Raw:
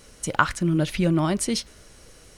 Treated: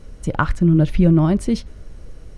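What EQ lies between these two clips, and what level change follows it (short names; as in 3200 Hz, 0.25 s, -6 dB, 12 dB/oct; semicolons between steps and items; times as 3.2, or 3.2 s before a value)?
tilt -3.5 dB/oct; 0.0 dB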